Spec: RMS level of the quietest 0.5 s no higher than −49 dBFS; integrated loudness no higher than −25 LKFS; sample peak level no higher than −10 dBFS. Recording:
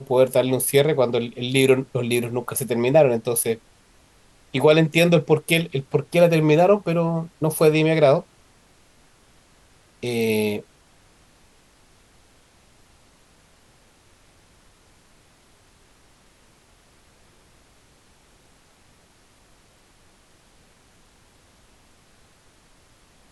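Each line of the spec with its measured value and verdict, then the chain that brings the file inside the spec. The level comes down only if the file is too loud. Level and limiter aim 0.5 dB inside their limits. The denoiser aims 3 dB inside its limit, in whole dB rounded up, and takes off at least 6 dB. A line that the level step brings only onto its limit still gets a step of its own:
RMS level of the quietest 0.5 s −56 dBFS: in spec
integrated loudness −20.0 LKFS: out of spec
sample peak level −4.0 dBFS: out of spec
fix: level −5.5 dB
brickwall limiter −10.5 dBFS

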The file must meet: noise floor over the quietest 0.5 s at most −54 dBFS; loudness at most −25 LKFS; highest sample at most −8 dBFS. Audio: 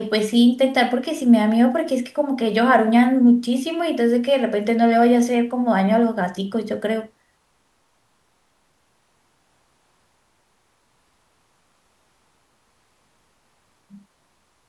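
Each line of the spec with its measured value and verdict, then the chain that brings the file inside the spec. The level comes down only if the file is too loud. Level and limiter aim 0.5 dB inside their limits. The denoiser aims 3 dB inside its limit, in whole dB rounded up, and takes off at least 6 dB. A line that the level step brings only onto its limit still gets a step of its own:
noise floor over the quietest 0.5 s −64 dBFS: in spec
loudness −18.5 LKFS: out of spec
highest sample −3.5 dBFS: out of spec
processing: level −7 dB

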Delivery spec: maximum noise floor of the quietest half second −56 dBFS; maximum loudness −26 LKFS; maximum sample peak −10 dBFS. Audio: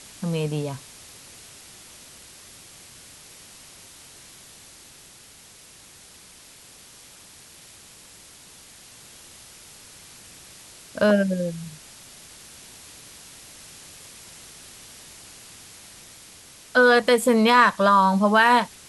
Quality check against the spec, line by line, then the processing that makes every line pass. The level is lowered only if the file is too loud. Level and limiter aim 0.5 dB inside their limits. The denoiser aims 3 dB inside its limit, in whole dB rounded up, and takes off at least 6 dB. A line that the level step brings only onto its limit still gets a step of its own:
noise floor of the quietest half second −49 dBFS: out of spec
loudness −19.5 LKFS: out of spec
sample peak −5.0 dBFS: out of spec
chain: broadband denoise 6 dB, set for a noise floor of −49 dBFS
level −7 dB

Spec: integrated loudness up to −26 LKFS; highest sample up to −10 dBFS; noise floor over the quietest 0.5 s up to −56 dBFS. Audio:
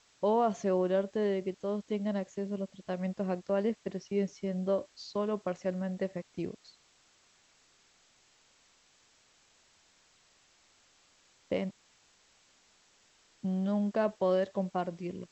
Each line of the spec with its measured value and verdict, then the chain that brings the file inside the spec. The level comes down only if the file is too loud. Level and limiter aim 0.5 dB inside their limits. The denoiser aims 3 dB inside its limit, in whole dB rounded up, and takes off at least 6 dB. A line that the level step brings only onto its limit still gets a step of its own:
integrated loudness −33.0 LKFS: in spec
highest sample −17.5 dBFS: in spec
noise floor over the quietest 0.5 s −66 dBFS: in spec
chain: no processing needed

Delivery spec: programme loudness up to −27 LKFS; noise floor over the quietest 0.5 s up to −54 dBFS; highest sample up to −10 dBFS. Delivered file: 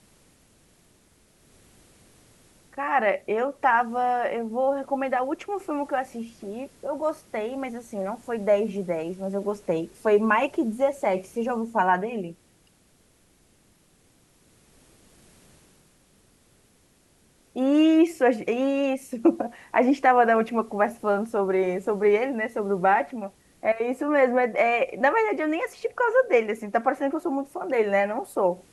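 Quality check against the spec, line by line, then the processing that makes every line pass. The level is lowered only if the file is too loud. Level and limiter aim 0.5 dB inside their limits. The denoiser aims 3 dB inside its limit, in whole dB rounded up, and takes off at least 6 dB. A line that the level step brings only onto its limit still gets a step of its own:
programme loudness −24.5 LKFS: out of spec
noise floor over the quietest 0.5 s −61 dBFS: in spec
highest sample −6.5 dBFS: out of spec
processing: level −3 dB
brickwall limiter −10.5 dBFS

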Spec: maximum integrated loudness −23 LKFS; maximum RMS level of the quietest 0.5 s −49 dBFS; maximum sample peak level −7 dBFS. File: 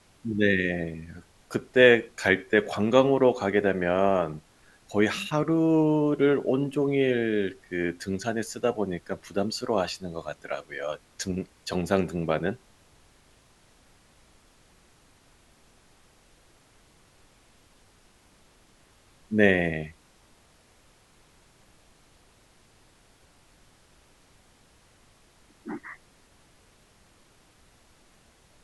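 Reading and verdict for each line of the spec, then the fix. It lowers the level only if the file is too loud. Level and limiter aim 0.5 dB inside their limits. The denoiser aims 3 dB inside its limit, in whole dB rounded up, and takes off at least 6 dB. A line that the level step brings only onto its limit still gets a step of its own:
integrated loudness −25.5 LKFS: in spec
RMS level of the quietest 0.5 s −60 dBFS: in spec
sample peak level −4.0 dBFS: out of spec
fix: brickwall limiter −7.5 dBFS

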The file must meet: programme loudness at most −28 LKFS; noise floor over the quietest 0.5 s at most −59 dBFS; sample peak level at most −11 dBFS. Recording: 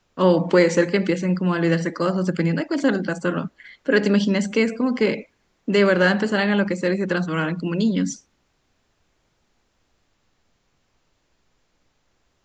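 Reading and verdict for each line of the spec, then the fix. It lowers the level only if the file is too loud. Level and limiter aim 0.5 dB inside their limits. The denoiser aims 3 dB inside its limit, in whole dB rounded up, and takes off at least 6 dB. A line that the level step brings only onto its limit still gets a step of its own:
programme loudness −21.0 LKFS: out of spec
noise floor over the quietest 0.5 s −68 dBFS: in spec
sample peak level −3.5 dBFS: out of spec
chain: level −7.5 dB
brickwall limiter −11.5 dBFS

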